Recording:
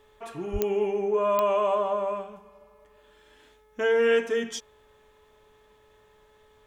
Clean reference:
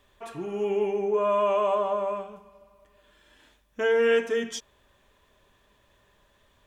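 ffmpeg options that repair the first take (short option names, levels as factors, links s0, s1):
-filter_complex "[0:a]adeclick=t=4,bandreject=f=428.7:t=h:w=4,bandreject=f=857.4:t=h:w=4,bandreject=f=1286.1:t=h:w=4,bandreject=f=1714.8:t=h:w=4,bandreject=f=2143.5:t=h:w=4,asplit=3[s0][s1][s2];[s0]afade=t=out:st=0.52:d=0.02[s3];[s1]highpass=f=140:w=0.5412,highpass=f=140:w=1.3066,afade=t=in:st=0.52:d=0.02,afade=t=out:st=0.64:d=0.02[s4];[s2]afade=t=in:st=0.64:d=0.02[s5];[s3][s4][s5]amix=inputs=3:normalize=0"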